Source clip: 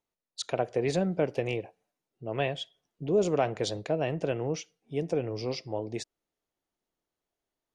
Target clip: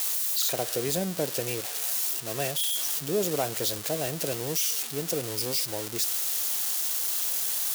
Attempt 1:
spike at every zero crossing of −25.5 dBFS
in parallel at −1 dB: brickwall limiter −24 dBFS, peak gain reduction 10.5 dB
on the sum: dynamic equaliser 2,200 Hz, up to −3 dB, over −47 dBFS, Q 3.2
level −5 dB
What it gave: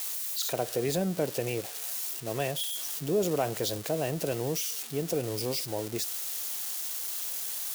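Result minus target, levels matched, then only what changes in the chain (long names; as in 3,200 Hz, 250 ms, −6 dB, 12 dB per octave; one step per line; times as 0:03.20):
spike at every zero crossing: distortion −9 dB
change: spike at every zero crossing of −16.5 dBFS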